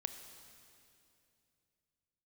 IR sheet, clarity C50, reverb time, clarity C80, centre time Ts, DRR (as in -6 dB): 8.5 dB, 2.7 s, 9.0 dB, 30 ms, 8.0 dB